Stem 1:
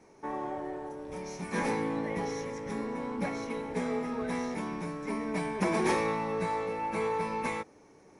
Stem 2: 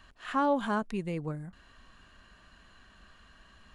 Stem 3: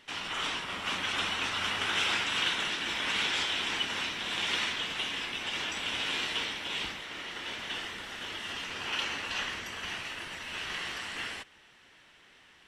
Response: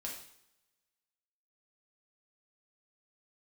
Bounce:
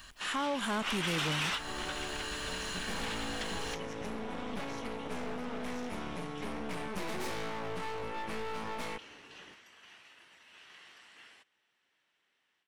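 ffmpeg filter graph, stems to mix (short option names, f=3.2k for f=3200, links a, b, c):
-filter_complex "[0:a]aeval=exprs='0.178*(cos(1*acos(clip(val(0)/0.178,-1,1)))-cos(1*PI/2))+0.0398*(cos(8*acos(clip(val(0)/0.178,-1,1)))-cos(8*PI/2))':c=same,asoftclip=type=hard:threshold=-24.5dB,adelay=1350,volume=-17.5dB[a];[1:a]crystalizer=i=5:c=0,volume=0.5dB,asplit=2[b][c];[2:a]highpass=f=280:p=1,volume=-1.5dB[d];[c]apad=whole_len=558969[e];[d][e]sidechaingate=range=-33dB:threshold=-48dB:ratio=16:detection=peak[f];[a][b][f]amix=inputs=3:normalize=0,dynaudnorm=f=600:g=3:m=16dB,asoftclip=type=tanh:threshold=-20dB,acompressor=threshold=-35dB:ratio=2.5"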